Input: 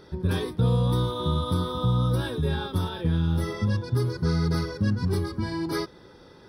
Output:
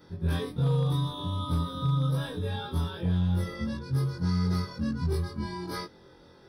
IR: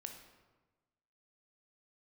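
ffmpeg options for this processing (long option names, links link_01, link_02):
-af "afftfilt=real='re':imag='-im':win_size=2048:overlap=0.75,volume=19.5dB,asoftclip=hard,volume=-19.5dB"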